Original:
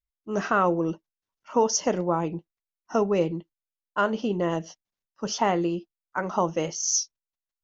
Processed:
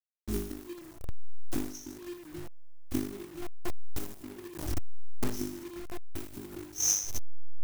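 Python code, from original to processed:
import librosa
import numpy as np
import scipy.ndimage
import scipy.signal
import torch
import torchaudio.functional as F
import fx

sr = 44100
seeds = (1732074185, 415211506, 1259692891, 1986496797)

y = fx.delta_hold(x, sr, step_db=-34.5)
y = fx.peak_eq(y, sr, hz=3700.0, db=-10.5, octaves=2.3)
y = fx.gate_flip(y, sr, shuts_db=-21.0, range_db=-27)
y = fx.brickwall_bandstop(y, sr, low_hz=400.0, high_hz=5100.0)
y = y + 0.84 * np.pad(y, (int(2.7 * sr / 1000.0), 0))[:len(y)]
y = fx.room_flutter(y, sr, wall_m=3.4, rt60_s=0.59)
y = fx.quant_companded(y, sr, bits=4)
y = fx.peak_eq(y, sr, hz=83.0, db=8.0, octaves=1.4)
y = fx.pre_swell(y, sr, db_per_s=90.0, at=(4.48, 6.74))
y = F.gain(torch.from_numpy(y), 2.5).numpy()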